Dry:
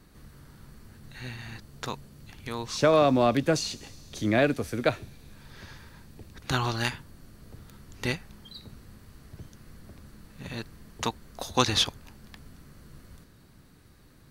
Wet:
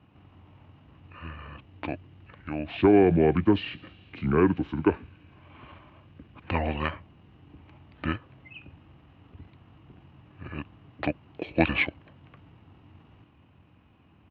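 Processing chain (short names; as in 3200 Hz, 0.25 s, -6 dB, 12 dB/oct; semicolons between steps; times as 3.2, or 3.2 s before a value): elliptic band-pass 120–4300 Hz, stop band 80 dB; pitch shift -7.5 st; bell 300 Hz +7 dB 0.44 oct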